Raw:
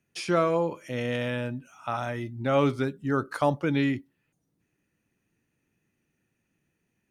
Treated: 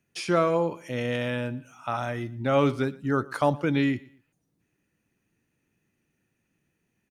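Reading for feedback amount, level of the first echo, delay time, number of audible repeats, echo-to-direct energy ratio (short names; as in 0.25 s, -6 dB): 32%, -22.0 dB, 0.118 s, 2, -21.5 dB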